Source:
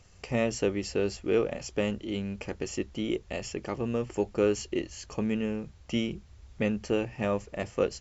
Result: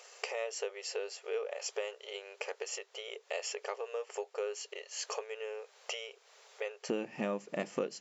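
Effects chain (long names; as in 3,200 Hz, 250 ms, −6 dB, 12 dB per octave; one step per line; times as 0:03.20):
downward compressor 6 to 1, threshold −41 dBFS, peak gain reduction 19 dB
linear-phase brick-wall high-pass 400 Hz, from 0:06.88 150 Hz
level +8.5 dB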